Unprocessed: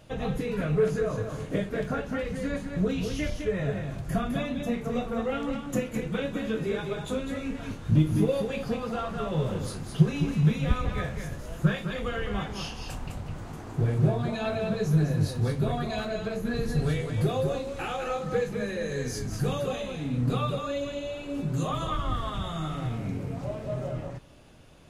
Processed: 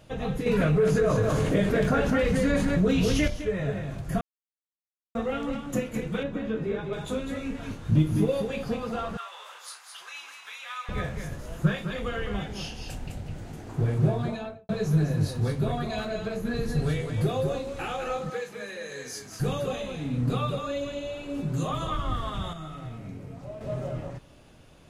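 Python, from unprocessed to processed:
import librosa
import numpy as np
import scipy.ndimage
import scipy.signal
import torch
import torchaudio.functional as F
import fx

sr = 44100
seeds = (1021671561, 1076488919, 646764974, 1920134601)

y = fx.env_flatten(x, sr, amount_pct=70, at=(0.46, 3.28))
y = fx.lowpass(y, sr, hz=1700.0, slope=6, at=(6.23, 6.93))
y = fx.highpass(y, sr, hz=1000.0, slope=24, at=(9.17, 10.89))
y = fx.peak_eq(y, sr, hz=1100.0, db=-11.0, octaves=0.54, at=(12.36, 13.69))
y = fx.studio_fade_out(y, sr, start_s=14.23, length_s=0.46)
y = fx.highpass(y, sr, hz=930.0, slope=6, at=(18.3, 19.4))
y = fx.comb_fb(y, sr, f0_hz=640.0, decay_s=0.16, harmonics='all', damping=0.0, mix_pct=60, at=(22.53, 23.61))
y = fx.edit(y, sr, fx.silence(start_s=4.21, length_s=0.94), tone=tone)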